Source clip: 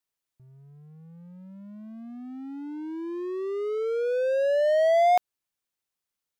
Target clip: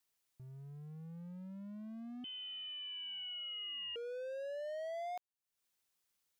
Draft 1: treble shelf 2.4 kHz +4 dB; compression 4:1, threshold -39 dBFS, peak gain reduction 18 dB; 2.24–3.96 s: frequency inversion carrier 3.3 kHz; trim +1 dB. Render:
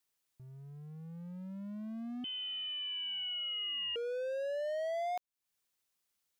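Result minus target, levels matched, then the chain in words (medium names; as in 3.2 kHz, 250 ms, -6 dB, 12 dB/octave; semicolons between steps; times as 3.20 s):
compression: peak gain reduction -6 dB
treble shelf 2.4 kHz +4 dB; compression 4:1, threshold -47 dBFS, peak gain reduction 24 dB; 2.24–3.96 s: frequency inversion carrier 3.3 kHz; trim +1 dB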